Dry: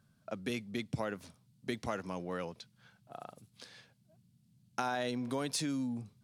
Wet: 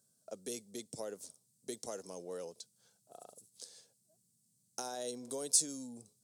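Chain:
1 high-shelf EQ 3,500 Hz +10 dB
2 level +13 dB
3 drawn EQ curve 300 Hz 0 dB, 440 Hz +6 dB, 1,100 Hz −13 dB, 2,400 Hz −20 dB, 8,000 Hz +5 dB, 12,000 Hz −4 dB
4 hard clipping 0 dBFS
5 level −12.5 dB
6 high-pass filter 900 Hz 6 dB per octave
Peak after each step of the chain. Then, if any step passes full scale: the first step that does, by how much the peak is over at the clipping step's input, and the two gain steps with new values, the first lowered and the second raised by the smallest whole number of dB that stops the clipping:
−15.5, −2.5, −2.0, −2.0, −14.5, −14.5 dBFS
no step passes full scale

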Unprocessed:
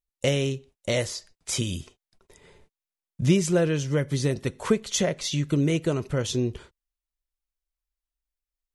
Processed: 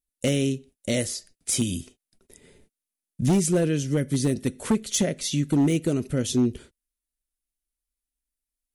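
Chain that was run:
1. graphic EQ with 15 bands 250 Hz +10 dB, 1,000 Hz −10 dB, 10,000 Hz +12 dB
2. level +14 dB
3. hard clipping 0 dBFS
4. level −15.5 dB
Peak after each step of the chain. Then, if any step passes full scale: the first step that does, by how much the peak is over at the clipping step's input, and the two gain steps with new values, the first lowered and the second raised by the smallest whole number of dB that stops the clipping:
−4.5, +9.5, 0.0, −15.5 dBFS
step 2, 9.5 dB
step 2 +4 dB, step 4 −5.5 dB

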